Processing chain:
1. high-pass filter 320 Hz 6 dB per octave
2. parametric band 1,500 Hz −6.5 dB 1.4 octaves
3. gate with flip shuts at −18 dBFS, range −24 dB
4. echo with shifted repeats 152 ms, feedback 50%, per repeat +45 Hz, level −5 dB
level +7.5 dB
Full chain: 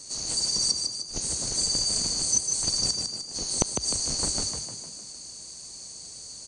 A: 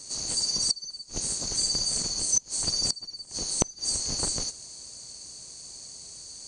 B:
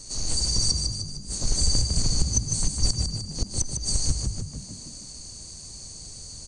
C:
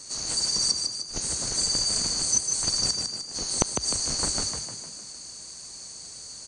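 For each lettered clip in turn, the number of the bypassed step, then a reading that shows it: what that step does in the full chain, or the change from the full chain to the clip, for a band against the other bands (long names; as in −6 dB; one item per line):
4, echo-to-direct ratio −3.5 dB to none audible
1, 125 Hz band +15.0 dB
2, 2 kHz band +4.5 dB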